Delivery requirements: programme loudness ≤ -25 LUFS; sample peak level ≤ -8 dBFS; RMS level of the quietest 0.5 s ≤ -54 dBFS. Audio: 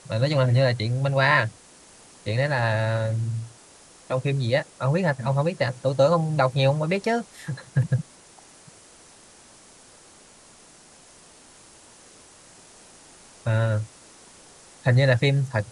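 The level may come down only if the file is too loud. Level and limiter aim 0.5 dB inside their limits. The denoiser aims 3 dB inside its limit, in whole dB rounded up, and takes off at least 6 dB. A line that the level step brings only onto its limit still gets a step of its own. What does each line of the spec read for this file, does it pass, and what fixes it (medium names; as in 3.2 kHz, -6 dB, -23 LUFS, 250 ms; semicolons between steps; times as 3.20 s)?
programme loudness -23.5 LUFS: fail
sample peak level -5.5 dBFS: fail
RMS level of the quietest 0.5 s -51 dBFS: fail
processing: noise reduction 6 dB, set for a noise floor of -51 dBFS; trim -2 dB; peak limiter -8.5 dBFS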